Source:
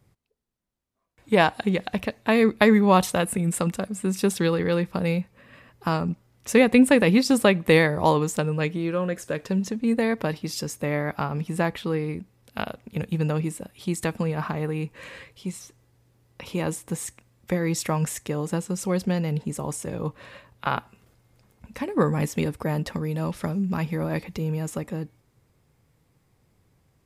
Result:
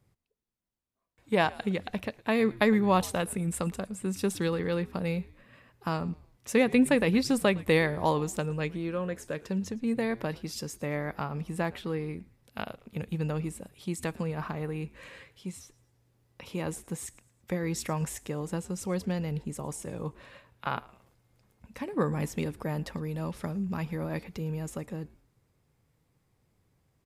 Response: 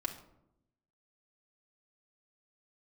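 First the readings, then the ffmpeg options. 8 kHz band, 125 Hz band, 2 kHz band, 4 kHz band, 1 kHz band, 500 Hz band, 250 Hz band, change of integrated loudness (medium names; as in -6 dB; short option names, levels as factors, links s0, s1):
-6.5 dB, -6.5 dB, -6.5 dB, -6.5 dB, -6.5 dB, -6.5 dB, -6.5 dB, -6.5 dB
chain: -filter_complex "[0:a]asplit=4[s0][s1][s2][s3];[s1]adelay=111,afreqshift=-100,volume=0.0794[s4];[s2]adelay=222,afreqshift=-200,volume=0.0309[s5];[s3]adelay=333,afreqshift=-300,volume=0.012[s6];[s0][s4][s5][s6]amix=inputs=4:normalize=0,volume=0.473"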